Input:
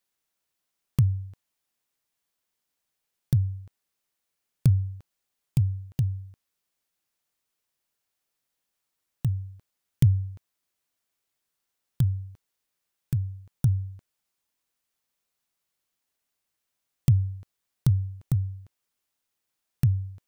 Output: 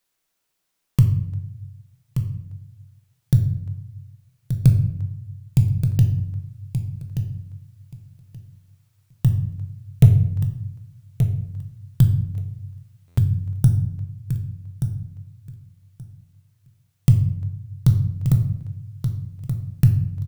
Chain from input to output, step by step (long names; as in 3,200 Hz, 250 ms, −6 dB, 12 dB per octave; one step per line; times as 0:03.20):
speech leveller 0.5 s
hard clipping −10 dBFS, distortion −29 dB
repeating echo 1,178 ms, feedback 17%, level −8.5 dB
rectangular room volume 170 cubic metres, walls mixed, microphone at 0.57 metres
buffer that repeats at 0:13.07, samples 512, times 8
level +5.5 dB